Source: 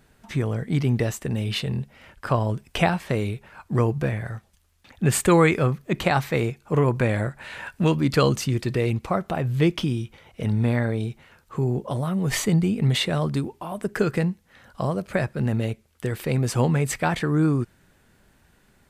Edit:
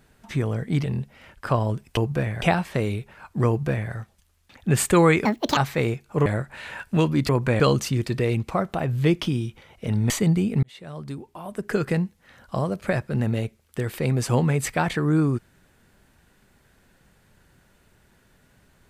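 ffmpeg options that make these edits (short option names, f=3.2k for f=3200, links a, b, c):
-filter_complex "[0:a]asplit=11[a][b][c][d][e][f][g][h][i][j][k];[a]atrim=end=0.842[l];[b]atrim=start=1.638:end=2.772[m];[c]atrim=start=3.828:end=4.282[n];[d]atrim=start=2.768:end=5.604[o];[e]atrim=start=5.6:end=6.13,asetpts=PTS-STARTPTS,asetrate=73206,aresample=44100,atrim=end_sample=14080,asetpts=PTS-STARTPTS[p];[f]atrim=start=6.126:end=6.822[q];[g]atrim=start=7.128:end=8.162[r];[h]atrim=start=6.818:end=7.132[s];[i]atrim=start=8.158:end=10.662[t];[j]atrim=start=12.358:end=12.89,asetpts=PTS-STARTPTS,afade=t=out:st=0.528:d=0.004:c=hsin[u];[k]atrim=start=12.89,asetpts=PTS-STARTPTS,afade=t=in:d=1.34[v];[l][m]acrossfade=d=0.004:c1=hsin:c2=hsin[w];[w][n]acrossfade=d=0.004:c1=hsin:c2=hsin[x];[x][o]acrossfade=d=0.004:c1=hsin:c2=hsin[y];[y][p]acrossfade=d=0.004:c1=hsin:c2=hsin[z];[z][q]acrossfade=d=0.004:c1=hsin:c2=hsin[aa];[aa][r]acrossfade=d=0.004:c1=hsin:c2=hsin[ab];[ab][s]acrossfade=d=0.004:c1=hsin:c2=hsin[ac];[ac][t]acrossfade=d=0.004:c1=hsin:c2=hsin[ad];[u][v]concat=n=2:v=0:a=1[ae];[ad][ae]acrossfade=d=0.004:c1=hsin:c2=hsin"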